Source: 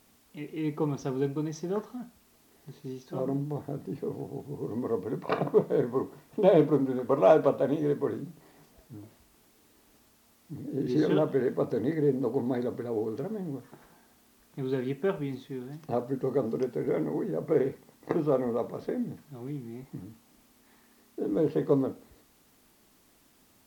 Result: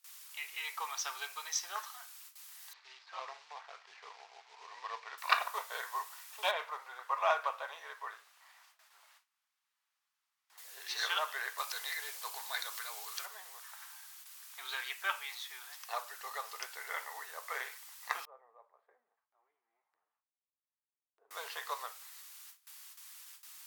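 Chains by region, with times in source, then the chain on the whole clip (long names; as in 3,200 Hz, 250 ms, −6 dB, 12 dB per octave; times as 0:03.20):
0:02.73–0:05.18: running median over 15 samples + low-pass filter 5,400 Hz 24 dB per octave + parametric band 2,300 Hz +4.5 dB 0.3 octaves
0:06.51–0:10.58: low-pass filter 1,400 Hz 6 dB per octave + low-shelf EQ 270 Hz −7 dB
0:11.58–0:13.26: tilt shelving filter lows −6 dB, about 1,200 Hz + notch filter 1,900 Hz, Q 13 + upward compression, threshold −36 dBFS
0:18.25–0:21.31: four-pole ladder band-pass 320 Hz, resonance 30% + high-frequency loss of the air 160 metres
whole clip: noise gate with hold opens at −52 dBFS; inverse Chebyshev high-pass filter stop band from 300 Hz, stop band 60 dB; high-shelf EQ 2,300 Hz +9 dB; level +4.5 dB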